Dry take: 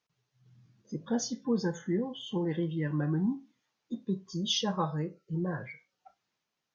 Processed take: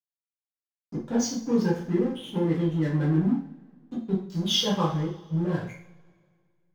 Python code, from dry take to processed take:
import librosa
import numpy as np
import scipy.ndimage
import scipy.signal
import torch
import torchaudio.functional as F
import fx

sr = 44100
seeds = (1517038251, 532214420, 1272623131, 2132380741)

y = fx.backlash(x, sr, play_db=-37.0)
y = fx.rev_double_slope(y, sr, seeds[0], early_s=0.46, late_s=2.0, knee_db=-22, drr_db=-5.0)